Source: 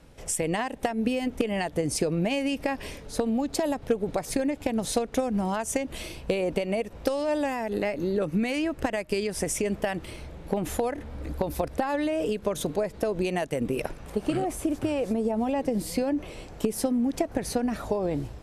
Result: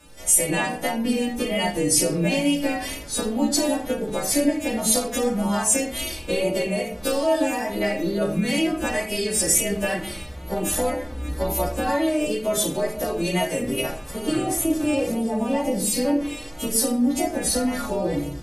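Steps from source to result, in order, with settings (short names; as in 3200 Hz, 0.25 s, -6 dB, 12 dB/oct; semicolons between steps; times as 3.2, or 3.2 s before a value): frequency quantiser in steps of 2 st; wow and flutter 60 cents; shoebox room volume 570 m³, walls furnished, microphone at 2.5 m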